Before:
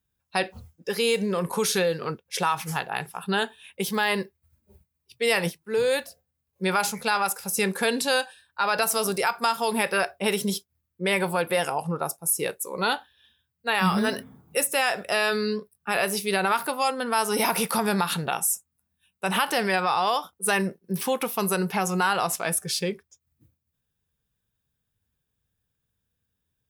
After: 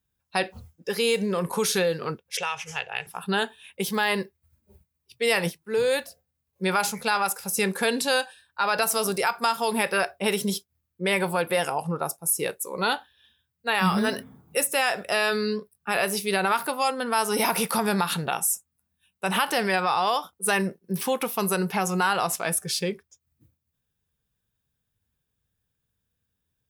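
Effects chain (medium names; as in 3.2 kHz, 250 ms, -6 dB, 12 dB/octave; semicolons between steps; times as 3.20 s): 2.37–3.07 s: FFT filter 100 Hz 0 dB, 270 Hz -26 dB, 470 Hz -1 dB, 710 Hz -6 dB, 1.1 kHz -9 dB, 2.9 kHz +6 dB, 4.2 kHz -9 dB, 6.1 kHz +4 dB, 14 kHz -24 dB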